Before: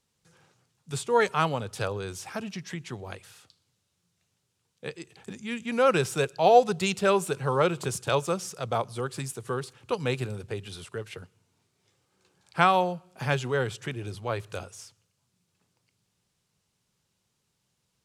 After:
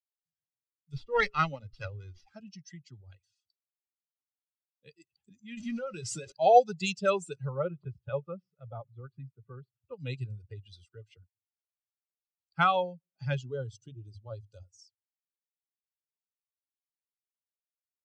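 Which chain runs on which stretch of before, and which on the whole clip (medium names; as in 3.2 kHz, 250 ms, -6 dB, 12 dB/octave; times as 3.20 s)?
0.92–2.35 s: hum notches 60/120/180/240/300/360/420 Hz + dynamic bell 2.2 kHz, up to +7 dB, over -41 dBFS, Q 1.4 + sliding maximum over 5 samples
5.57–6.32 s: jump at every zero crossing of -28.5 dBFS + compression 5:1, threshold -26 dBFS + doubling 25 ms -12 dB
7.49–9.99 s: distance through air 470 m + band-stop 310 Hz, Q 5.7
13.41–14.79 s: peaking EQ 2 kHz -14.5 dB 0.62 oct + hum notches 50/100/150 Hz
whole clip: expander on every frequency bin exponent 2; steep low-pass 8.1 kHz 36 dB/octave; comb 1.5 ms, depth 51%; trim -2 dB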